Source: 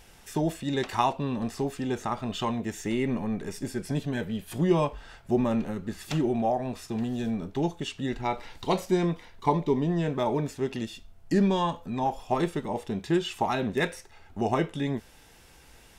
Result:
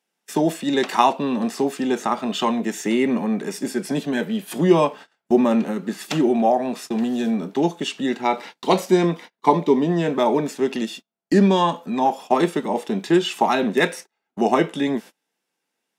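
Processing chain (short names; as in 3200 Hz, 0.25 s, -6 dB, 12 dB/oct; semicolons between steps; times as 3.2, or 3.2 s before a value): steep high-pass 180 Hz 36 dB/oct; gate -44 dBFS, range -31 dB; gain +8.5 dB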